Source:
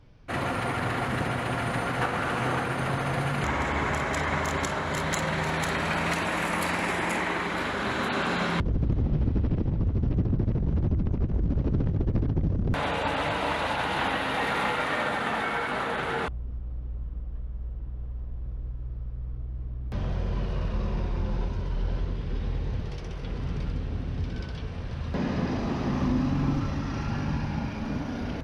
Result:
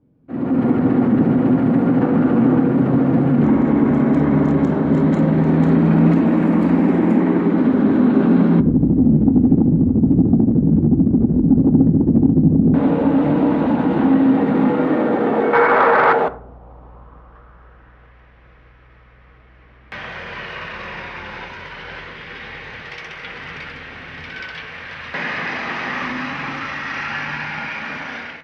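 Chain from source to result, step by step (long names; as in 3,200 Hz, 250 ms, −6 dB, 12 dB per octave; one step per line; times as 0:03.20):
band-pass filter sweep 260 Hz → 2,000 Hz, 0:14.62–0:18.20
dynamic equaliser 250 Hz, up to +5 dB, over −47 dBFS, Q 1.4
in parallel at +1 dB: brickwall limiter −28.5 dBFS, peak gain reduction 11 dB
0:15.53–0:16.13: on the sum: flat-topped bell 1,500 Hz +12.5 dB
soft clipping −16 dBFS, distortion −25 dB
automatic gain control gain up to 15 dB
on a send at −10.5 dB: convolution reverb RT60 0.55 s, pre-delay 3 ms
on the sum: level −1 dB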